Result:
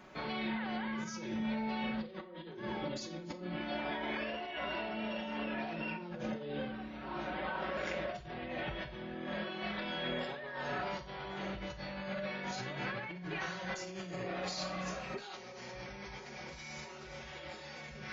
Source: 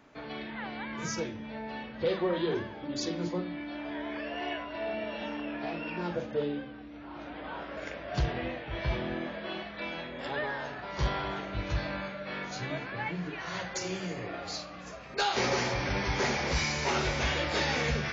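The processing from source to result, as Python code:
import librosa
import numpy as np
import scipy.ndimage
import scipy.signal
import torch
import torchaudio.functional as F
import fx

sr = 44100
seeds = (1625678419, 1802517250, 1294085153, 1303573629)

y = x + 0.73 * np.pad(x, (int(5.4 * sr / 1000.0), 0))[:len(x)]
y = fx.over_compress(y, sr, threshold_db=-39.0, ratio=-1.0)
y = fx.rev_schroeder(y, sr, rt60_s=0.31, comb_ms=25, drr_db=9.5)
y = y * 10.0 ** (-3.5 / 20.0)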